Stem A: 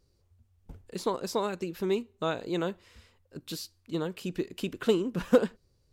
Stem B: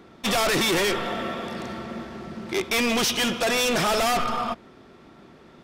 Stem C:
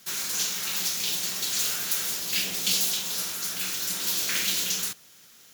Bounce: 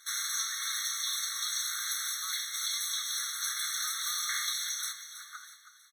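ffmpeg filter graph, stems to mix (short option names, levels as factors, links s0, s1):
-filter_complex "[0:a]equalizer=f=550:t=o:w=2.6:g=13,volume=0.178,asplit=2[s0][s1];[s1]volume=0.266[s2];[1:a]volume=0.133[s3];[2:a]lowpass=12000,alimiter=limit=0.0891:level=0:latency=1:release=303,volume=1.19,asplit=2[s4][s5];[s5]volume=0.251[s6];[s2][s6]amix=inputs=2:normalize=0,aecho=0:1:322|644|966|1288|1610|1932:1|0.45|0.202|0.0911|0.041|0.0185[s7];[s0][s3][s4][s7]amix=inputs=4:normalize=0,afftfilt=real='re*eq(mod(floor(b*sr/1024/1100),2),1)':imag='im*eq(mod(floor(b*sr/1024/1100),2),1)':win_size=1024:overlap=0.75"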